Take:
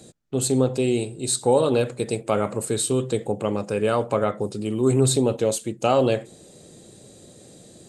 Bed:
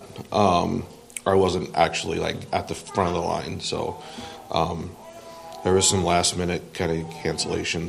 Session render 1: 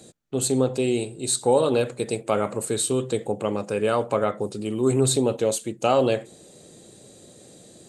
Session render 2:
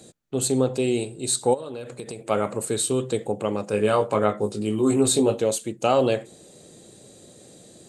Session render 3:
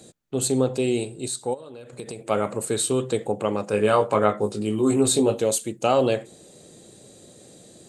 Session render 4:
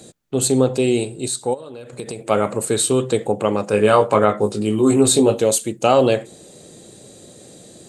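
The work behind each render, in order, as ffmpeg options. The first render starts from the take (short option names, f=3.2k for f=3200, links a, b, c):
-af "lowshelf=f=170:g=-5.5,bandreject=f=5.1k:w=24"
-filter_complex "[0:a]asplit=3[a][b][c];[a]afade=t=out:st=1.53:d=0.02[d];[b]acompressor=threshold=-30dB:ratio=12:attack=3.2:release=140:knee=1:detection=peak,afade=t=in:st=1.53:d=0.02,afade=t=out:st=2.29:d=0.02[e];[c]afade=t=in:st=2.29:d=0.02[f];[d][e][f]amix=inputs=3:normalize=0,asettb=1/sr,asplit=3[g][h][i];[g]atrim=end=3.714[j];[h]atrim=start=3.71:end=5.41,asetpts=PTS-STARTPTS,afade=t=in:d=0.004:c=qsin,afade=t=out:st=1.696:d=0.004:c=qsin,asplit=2[k][l];[l]adelay=19,volume=-4dB[m];[k][m]amix=inputs=2:normalize=0,atrim=end_sample=74970[n];[i]atrim=start=5.406[o];[j][n]acrossfade=d=0.004:c1=hsin:c2=qsin[p];[p][o]acrossfade=d=0.004:c1=qsin:c2=hsin"
-filter_complex "[0:a]asettb=1/sr,asplit=3[a][b][c];[a]atrim=end=2.704[d];[b]atrim=start=2.7:end=4.63,asetpts=PTS-STARTPTS,afade=t=in:d=0.004:c=qsin,afade=t=out:st=1.926:d=0.004:c=qsin,equalizer=f=1.2k:t=o:w=2.1:g=3[e];[c]atrim=start=4.626[f];[d][e]acrossfade=d=0.004:c1=hsin:c2=qsin[g];[g][f]acrossfade=d=0.004:c1=qsin:c2=hsin,asettb=1/sr,asplit=3[h][i][j];[h]atrim=end=5.364[k];[i]atrim=start=5.36:end=5.79,asetpts=PTS-STARTPTS,afade=t=in:d=0.004:c=qsin,afade=t=out:st=0.426:d=0.004:c=qsin,highshelf=f=6.8k:g=6.5[l];[j]atrim=start=5.786[m];[k][l]acrossfade=d=0.004:c1=hsin:c2=qsin[n];[n][m]acrossfade=d=0.004:c1=qsin:c2=hsin,asplit=3[o][p][q];[o]atrim=end=1.282[r];[p]atrim=start=1.278:end=1.932,asetpts=PTS-STARTPTS,volume=-6.5dB[s];[q]atrim=start=1.928[t];[r][s]acrossfade=d=0.004:c1=hsin:c2=hsin[u];[u][t]acrossfade=d=0.004:c1=hsin:c2=hsin"
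-af "volume=5.5dB,alimiter=limit=-1dB:level=0:latency=1"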